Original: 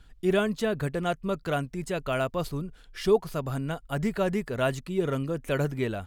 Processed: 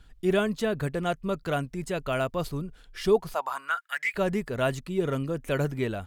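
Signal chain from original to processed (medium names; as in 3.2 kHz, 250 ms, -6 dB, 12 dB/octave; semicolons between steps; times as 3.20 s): 3.33–4.14 s: resonant high-pass 750 Hz -> 2.4 kHz, resonance Q 8.3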